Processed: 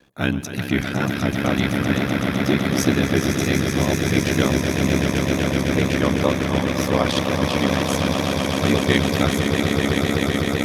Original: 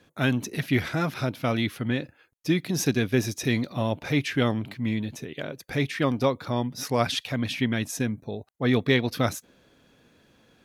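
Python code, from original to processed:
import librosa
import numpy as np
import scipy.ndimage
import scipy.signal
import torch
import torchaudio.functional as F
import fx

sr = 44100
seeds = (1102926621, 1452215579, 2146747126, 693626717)

y = fx.echo_swell(x, sr, ms=127, loudest=8, wet_db=-7.5)
y = fx.vibrato(y, sr, rate_hz=2.1, depth_cents=33.0)
y = y * np.sin(2.0 * np.pi * 34.0 * np.arange(len(y)) / sr)
y = y * 10.0 ** (5.0 / 20.0)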